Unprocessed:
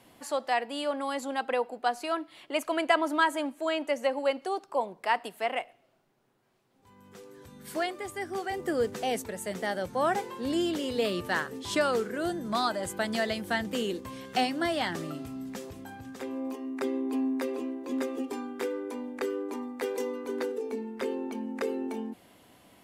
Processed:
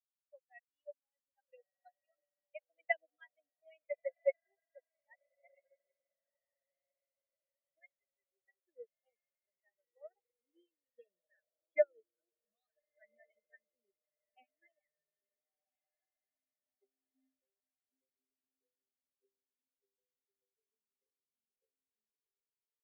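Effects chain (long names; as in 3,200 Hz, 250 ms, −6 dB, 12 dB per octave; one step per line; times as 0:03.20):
spectral dynamics exaggerated over time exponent 3
pair of resonant band-passes 1,100 Hz, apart 1.8 octaves
on a send: feedback delay with all-pass diffusion 1,401 ms, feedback 43%, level −11 dB
on the sum: spectral peaks only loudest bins 16
expander for the loud parts 2.5 to 1, over −55 dBFS
level +4.5 dB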